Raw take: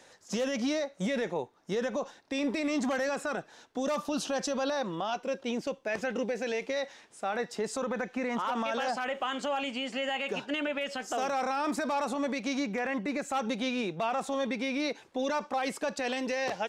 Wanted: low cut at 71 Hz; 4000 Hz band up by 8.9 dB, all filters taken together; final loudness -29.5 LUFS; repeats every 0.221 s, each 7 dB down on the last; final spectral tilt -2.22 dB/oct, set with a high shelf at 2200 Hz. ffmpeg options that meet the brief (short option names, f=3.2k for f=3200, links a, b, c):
-af "highpass=71,highshelf=f=2.2k:g=5,equalizer=f=4k:t=o:g=7,aecho=1:1:221|442|663|884|1105:0.447|0.201|0.0905|0.0407|0.0183,volume=-0.5dB"